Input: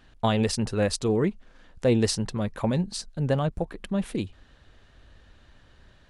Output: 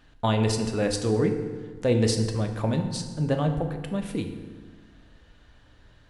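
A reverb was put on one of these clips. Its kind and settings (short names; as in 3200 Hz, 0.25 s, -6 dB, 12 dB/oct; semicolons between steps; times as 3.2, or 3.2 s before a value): FDN reverb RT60 1.5 s, low-frequency decay 1.2×, high-frequency decay 0.65×, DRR 4.5 dB; gain -1.5 dB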